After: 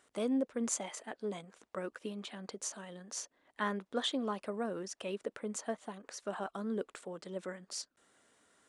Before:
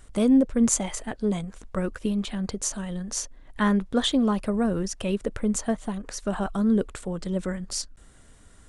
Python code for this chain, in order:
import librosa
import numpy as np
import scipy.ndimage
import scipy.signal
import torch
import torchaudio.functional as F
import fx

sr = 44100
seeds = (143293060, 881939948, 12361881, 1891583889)

y = scipy.signal.sosfilt(scipy.signal.butter(2, 350.0, 'highpass', fs=sr, output='sos'), x)
y = fx.high_shelf(y, sr, hz=8600.0, db=-8.5)
y = F.gain(torch.from_numpy(y), -8.0).numpy()